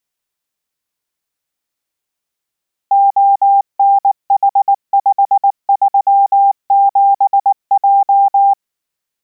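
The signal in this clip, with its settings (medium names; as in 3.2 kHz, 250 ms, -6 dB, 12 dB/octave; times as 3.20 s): Morse "ONH537J" 19 wpm 795 Hz -6 dBFS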